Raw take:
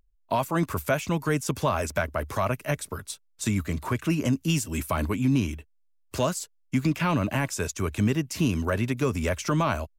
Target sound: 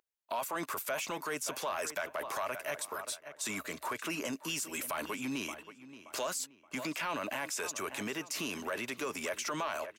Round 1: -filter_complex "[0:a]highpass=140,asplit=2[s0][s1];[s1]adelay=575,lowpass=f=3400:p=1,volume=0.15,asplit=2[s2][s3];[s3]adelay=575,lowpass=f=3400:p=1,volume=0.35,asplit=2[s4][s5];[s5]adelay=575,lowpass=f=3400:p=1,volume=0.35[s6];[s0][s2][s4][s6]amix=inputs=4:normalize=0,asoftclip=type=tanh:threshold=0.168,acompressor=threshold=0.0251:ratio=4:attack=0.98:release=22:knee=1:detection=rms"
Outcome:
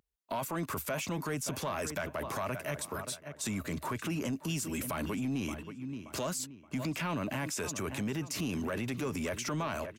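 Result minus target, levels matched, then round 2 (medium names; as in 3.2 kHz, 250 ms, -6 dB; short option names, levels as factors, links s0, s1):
125 Hz band +13.5 dB
-filter_complex "[0:a]highpass=540,asplit=2[s0][s1];[s1]adelay=575,lowpass=f=3400:p=1,volume=0.15,asplit=2[s2][s3];[s3]adelay=575,lowpass=f=3400:p=1,volume=0.35,asplit=2[s4][s5];[s5]adelay=575,lowpass=f=3400:p=1,volume=0.35[s6];[s0][s2][s4][s6]amix=inputs=4:normalize=0,asoftclip=type=tanh:threshold=0.168,acompressor=threshold=0.0251:ratio=4:attack=0.98:release=22:knee=1:detection=rms"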